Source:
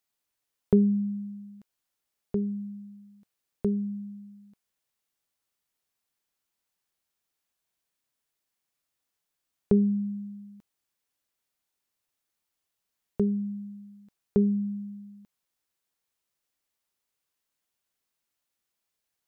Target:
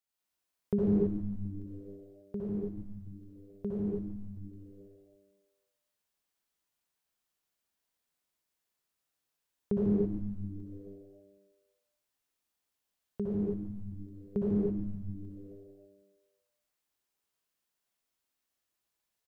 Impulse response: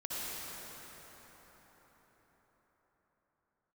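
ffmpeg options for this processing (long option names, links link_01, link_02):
-filter_complex "[0:a]asplit=9[link_01][link_02][link_03][link_04][link_05][link_06][link_07][link_08][link_09];[link_02]adelay=144,afreqshift=-100,volume=-9dB[link_10];[link_03]adelay=288,afreqshift=-200,volume=-13.2dB[link_11];[link_04]adelay=432,afreqshift=-300,volume=-17.3dB[link_12];[link_05]adelay=576,afreqshift=-400,volume=-21.5dB[link_13];[link_06]adelay=720,afreqshift=-500,volume=-25.6dB[link_14];[link_07]adelay=864,afreqshift=-600,volume=-29.8dB[link_15];[link_08]adelay=1008,afreqshift=-700,volume=-33.9dB[link_16];[link_09]adelay=1152,afreqshift=-800,volume=-38.1dB[link_17];[link_01][link_10][link_11][link_12][link_13][link_14][link_15][link_16][link_17]amix=inputs=9:normalize=0[link_18];[1:a]atrim=start_sample=2205,afade=type=out:start_time=0.39:duration=0.01,atrim=end_sample=17640[link_19];[link_18][link_19]afir=irnorm=-1:irlink=0,volume=-4dB"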